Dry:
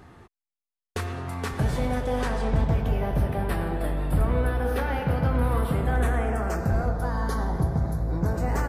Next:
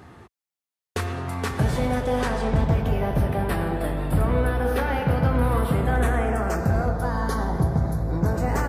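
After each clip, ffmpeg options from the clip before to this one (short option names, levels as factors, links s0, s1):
-af "highpass=59,volume=1.5"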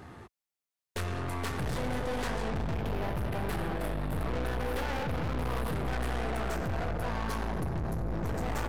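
-af "aeval=exprs='(tanh(39.8*val(0)+0.55)-tanh(0.55))/39.8':c=same,volume=1.12"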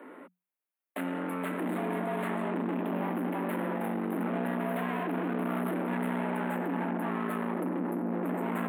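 -af "asuperstop=centerf=5200:order=4:qfactor=0.68,afreqshift=180"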